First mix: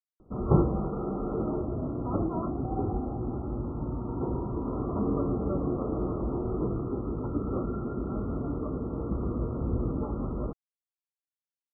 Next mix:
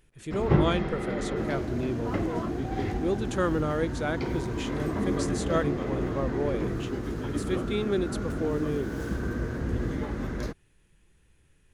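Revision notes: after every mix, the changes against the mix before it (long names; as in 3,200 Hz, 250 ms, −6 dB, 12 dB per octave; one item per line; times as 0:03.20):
speech: unmuted
master: remove linear-phase brick-wall low-pass 1,400 Hz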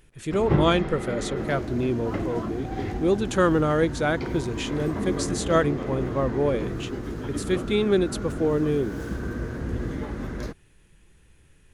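speech +6.5 dB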